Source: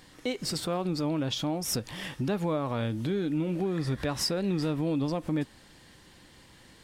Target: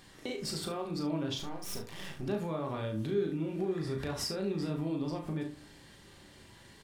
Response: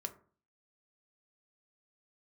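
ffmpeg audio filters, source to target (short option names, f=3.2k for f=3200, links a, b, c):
-filter_complex "[0:a]acompressor=threshold=-35dB:ratio=2,asettb=1/sr,asplit=3[a][b][c];[a]atrim=end=1.394[d];[b]atrim=start=1.39:end=2.23,asetpts=PTS-STARTPTS,afade=t=in:d=0.004:c=qsin,afade=t=out:st=0.836:d=0.004:c=qsin,aeval=exprs='max(val(0),0)':c=same[e];[c]atrim=start=2.226[f];[d][e]acrossfade=d=0.004:c1=hsin:c2=qsin[g];[g][f]acrossfade=d=0.004:c1=qsin:c2=hsin,aecho=1:1:37|70:0.501|0.237[h];[1:a]atrim=start_sample=2205[i];[h][i]afir=irnorm=-1:irlink=0"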